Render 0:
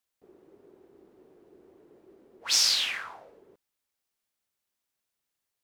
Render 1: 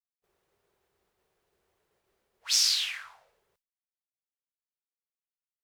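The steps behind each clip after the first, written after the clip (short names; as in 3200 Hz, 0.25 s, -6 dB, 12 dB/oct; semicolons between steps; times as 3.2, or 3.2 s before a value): expander -57 dBFS; passive tone stack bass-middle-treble 10-0-10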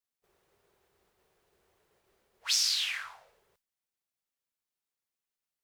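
compressor 2.5:1, threshold -32 dBFS, peak gain reduction 8 dB; gain +4 dB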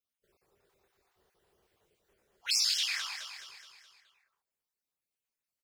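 random spectral dropouts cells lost 39%; on a send: feedback echo 0.211 s, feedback 52%, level -8.5 dB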